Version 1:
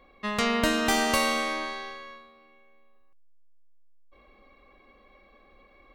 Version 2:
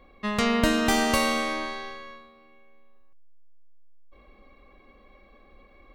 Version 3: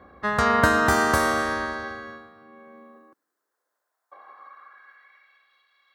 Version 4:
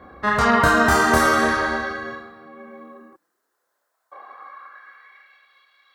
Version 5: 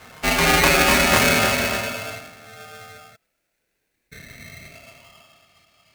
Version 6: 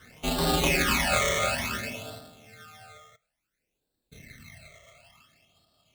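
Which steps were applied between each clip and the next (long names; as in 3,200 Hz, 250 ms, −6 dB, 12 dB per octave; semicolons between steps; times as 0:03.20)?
low-shelf EQ 300 Hz +6.5 dB
ceiling on every frequency bin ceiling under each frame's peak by 15 dB; high shelf with overshoot 2,000 Hz −8 dB, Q 3; high-pass filter sweep 72 Hz → 3,300 Hz, 0:01.74–0:05.59; level +2.5 dB
in parallel at +2.5 dB: brickwall limiter −16.5 dBFS, peak gain reduction 10 dB; on the sum: multi-voice chorus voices 6, 0.64 Hz, delay 29 ms, depth 4.2 ms; level +2 dB
ring modulator with a square carrier 1,000 Hz
all-pass phaser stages 12, 0.57 Hz, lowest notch 260–2,200 Hz; on a send at −16 dB: convolution reverb, pre-delay 3 ms; on the sum: level −5.5 dB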